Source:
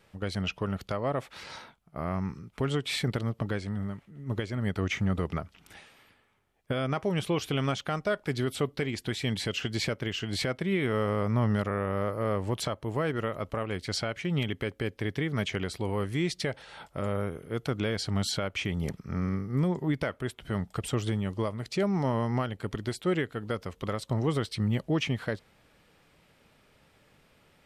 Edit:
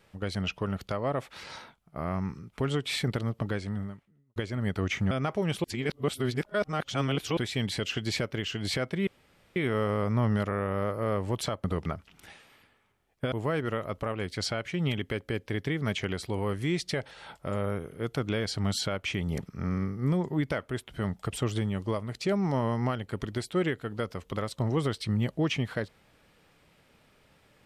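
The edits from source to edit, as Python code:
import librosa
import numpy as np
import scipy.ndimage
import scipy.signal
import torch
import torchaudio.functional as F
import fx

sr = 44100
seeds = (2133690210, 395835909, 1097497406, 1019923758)

y = fx.edit(x, sr, fx.fade_out_span(start_s=3.77, length_s=0.59, curve='qua'),
    fx.move(start_s=5.11, length_s=1.68, to_s=12.83),
    fx.reverse_span(start_s=7.32, length_s=1.73),
    fx.insert_room_tone(at_s=10.75, length_s=0.49), tone=tone)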